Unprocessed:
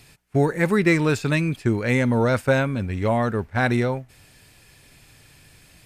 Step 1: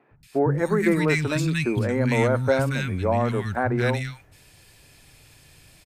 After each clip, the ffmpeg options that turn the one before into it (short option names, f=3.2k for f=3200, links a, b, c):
-filter_complex "[0:a]acrossover=split=220|1600[a][b][c];[a]adelay=110[d];[c]adelay=230[e];[d][b][e]amix=inputs=3:normalize=0"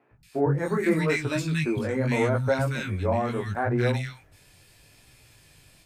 -af "flanger=delay=16:depth=6.5:speed=0.77"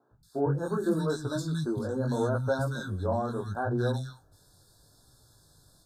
-af "asuperstop=centerf=2400:order=20:qfactor=1.3,volume=-4dB"